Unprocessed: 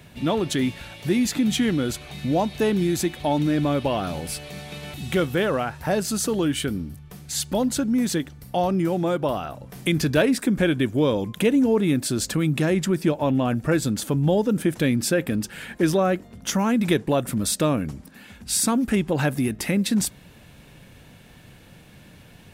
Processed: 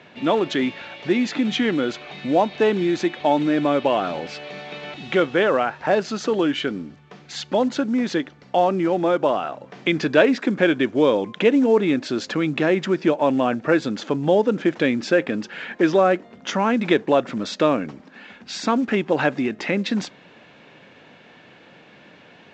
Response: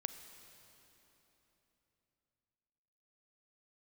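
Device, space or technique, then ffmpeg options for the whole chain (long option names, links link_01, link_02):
telephone: -af "highpass=310,lowpass=3100,volume=5.5dB" -ar 16000 -c:a pcm_mulaw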